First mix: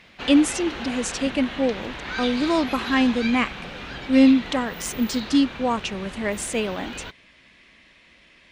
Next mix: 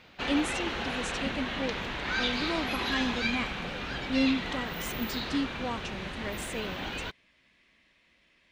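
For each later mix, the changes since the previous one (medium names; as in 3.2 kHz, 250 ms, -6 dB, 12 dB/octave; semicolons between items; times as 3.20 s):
speech -12.0 dB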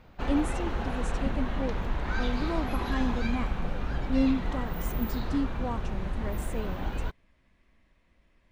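master: remove frequency weighting D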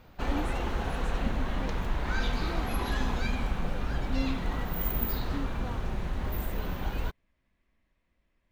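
speech -9.0 dB; background: add treble shelf 6.4 kHz +10 dB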